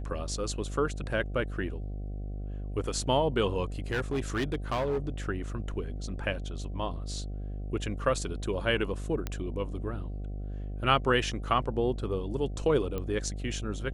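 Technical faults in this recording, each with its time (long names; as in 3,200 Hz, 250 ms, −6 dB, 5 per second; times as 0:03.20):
mains buzz 50 Hz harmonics 15 −36 dBFS
0:03.91–0:05.09: clipping −25 dBFS
0:09.27: click −18 dBFS
0:12.98: click −21 dBFS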